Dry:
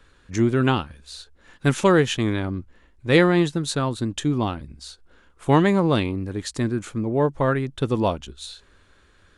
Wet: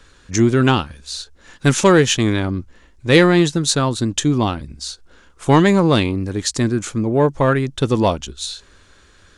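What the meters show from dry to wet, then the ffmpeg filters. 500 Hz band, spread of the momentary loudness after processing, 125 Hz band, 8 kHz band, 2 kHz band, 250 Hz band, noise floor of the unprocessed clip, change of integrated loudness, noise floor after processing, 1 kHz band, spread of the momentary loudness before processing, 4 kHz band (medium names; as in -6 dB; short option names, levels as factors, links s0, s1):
+5.0 dB, 16 LU, +5.0 dB, +12.0 dB, +5.5 dB, +5.0 dB, -57 dBFS, +5.5 dB, -51 dBFS, +5.0 dB, 19 LU, +8.5 dB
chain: -af "equalizer=f=6100:t=o:w=1.1:g=8,acontrast=45"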